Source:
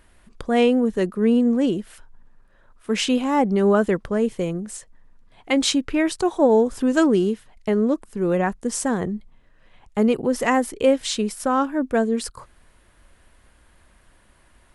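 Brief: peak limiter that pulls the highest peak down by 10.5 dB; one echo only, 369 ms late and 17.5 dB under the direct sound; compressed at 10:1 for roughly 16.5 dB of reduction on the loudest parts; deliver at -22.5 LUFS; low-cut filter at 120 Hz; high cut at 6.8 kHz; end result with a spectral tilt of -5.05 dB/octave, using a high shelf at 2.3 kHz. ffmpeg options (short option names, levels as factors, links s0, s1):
-af "highpass=120,lowpass=6800,highshelf=f=2300:g=-4.5,acompressor=threshold=0.0316:ratio=10,alimiter=level_in=1.88:limit=0.0631:level=0:latency=1,volume=0.531,aecho=1:1:369:0.133,volume=5.96"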